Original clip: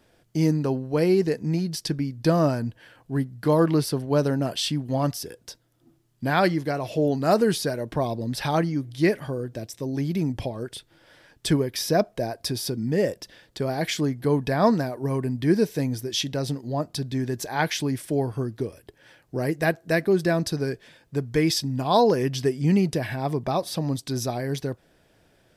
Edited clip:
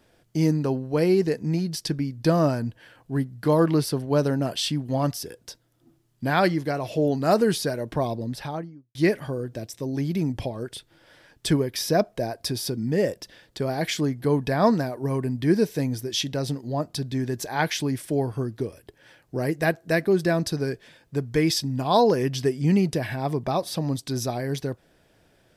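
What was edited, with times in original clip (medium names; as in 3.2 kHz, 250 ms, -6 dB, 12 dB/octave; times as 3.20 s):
8.03–8.95 s: studio fade out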